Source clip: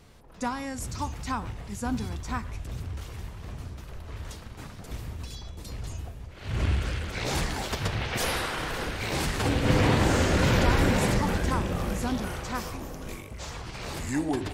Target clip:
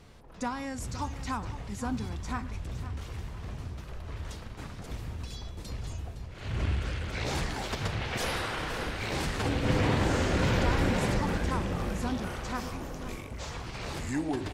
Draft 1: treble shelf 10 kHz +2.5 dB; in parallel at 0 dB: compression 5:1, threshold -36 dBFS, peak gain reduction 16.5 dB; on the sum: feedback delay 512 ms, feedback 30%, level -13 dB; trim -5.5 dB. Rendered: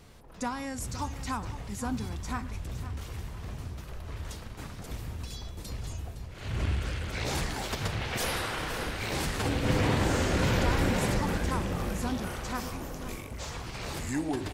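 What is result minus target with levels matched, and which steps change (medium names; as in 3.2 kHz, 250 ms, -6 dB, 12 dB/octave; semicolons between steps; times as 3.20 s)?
8 kHz band +3.5 dB
change: treble shelf 10 kHz -9.5 dB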